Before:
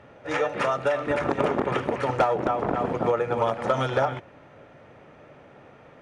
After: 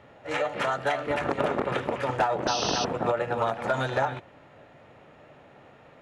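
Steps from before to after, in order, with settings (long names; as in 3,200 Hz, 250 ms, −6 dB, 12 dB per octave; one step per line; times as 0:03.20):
formants moved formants +2 semitones
sound drawn into the spectrogram noise, 0:02.47–0:02.85, 2,500–6,300 Hz −29 dBFS
level −2.5 dB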